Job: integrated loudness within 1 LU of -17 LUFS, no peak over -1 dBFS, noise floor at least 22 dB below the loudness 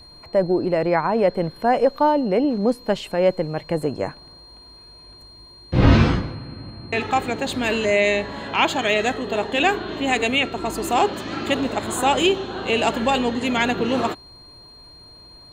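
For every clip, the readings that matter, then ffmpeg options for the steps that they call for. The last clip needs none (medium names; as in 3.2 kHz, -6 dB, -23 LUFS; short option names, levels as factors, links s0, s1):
steady tone 4.2 kHz; tone level -44 dBFS; loudness -21.0 LUFS; peak level -2.5 dBFS; loudness target -17.0 LUFS
-> -af "bandreject=f=4200:w=30"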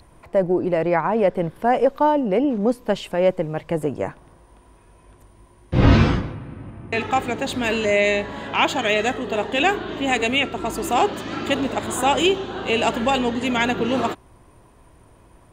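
steady tone not found; loudness -21.0 LUFS; peak level -2.5 dBFS; loudness target -17.0 LUFS
-> -af "volume=1.58,alimiter=limit=0.891:level=0:latency=1"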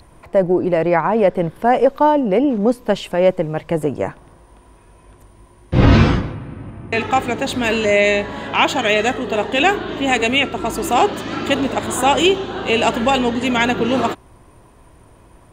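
loudness -17.0 LUFS; peak level -1.0 dBFS; noise floor -48 dBFS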